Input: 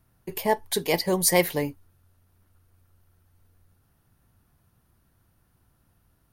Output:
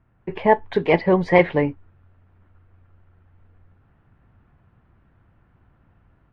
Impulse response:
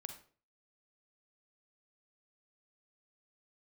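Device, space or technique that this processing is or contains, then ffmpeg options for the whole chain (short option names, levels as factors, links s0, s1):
action camera in a waterproof case: -af "lowpass=f=2400:w=0.5412,lowpass=f=2400:w=1.3066,dynaudnorm=f=170:g=3:m=1.78,volume=1.41" -ar 48000 -c:a aac -b:a 48k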